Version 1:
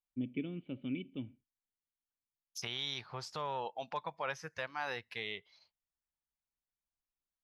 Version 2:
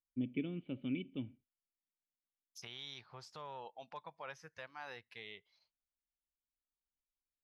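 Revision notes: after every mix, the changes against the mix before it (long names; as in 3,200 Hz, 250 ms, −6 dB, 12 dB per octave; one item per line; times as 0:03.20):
second voice −9.5 dB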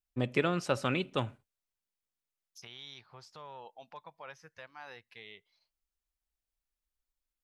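first voice: remove formant resonators in series i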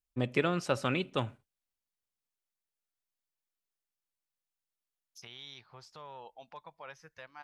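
second voice: entry +2.60 s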